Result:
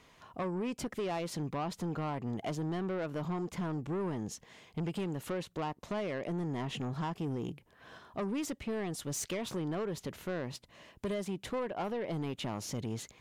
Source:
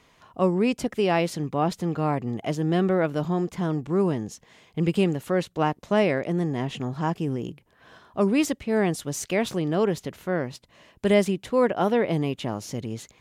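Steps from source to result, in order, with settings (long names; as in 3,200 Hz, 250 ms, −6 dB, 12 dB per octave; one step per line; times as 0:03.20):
dynamic equaliser 1,000 Hz, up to +5 dB, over −39 dBFS, Q 2
downward compressor 6 to 1, threshold −26 dBFS, peak gain reduction 12.5 dB
soft clipping −28 dBFS, distortion −12 dB
level −2 dB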